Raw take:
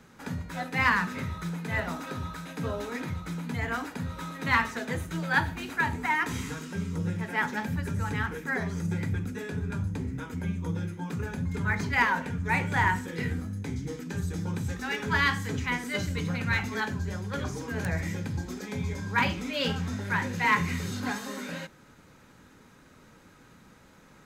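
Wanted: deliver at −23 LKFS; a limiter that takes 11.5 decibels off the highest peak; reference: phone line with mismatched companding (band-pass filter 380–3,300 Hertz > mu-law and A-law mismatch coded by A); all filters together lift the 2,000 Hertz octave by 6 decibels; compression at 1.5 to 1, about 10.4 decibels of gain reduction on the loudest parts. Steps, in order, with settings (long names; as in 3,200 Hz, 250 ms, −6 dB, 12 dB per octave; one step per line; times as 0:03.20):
parametric band 2,000 Hz +7.5 dB
downward compressor 1.5 to 1, threshold −44 dBFS
brickwall limiter −28 dBFS
band-pass filter 380–3,300 Hz
mu-law and A-law mismatch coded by A
level +20.5 dB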